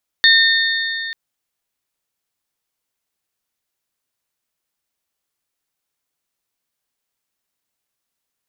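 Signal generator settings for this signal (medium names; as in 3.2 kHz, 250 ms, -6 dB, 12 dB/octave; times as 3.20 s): metal hit bell, length 0.89 s, lowest mode 1.82 kHz, modes 3, decay 3.31 s, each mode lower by 2 dB, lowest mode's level -10 dB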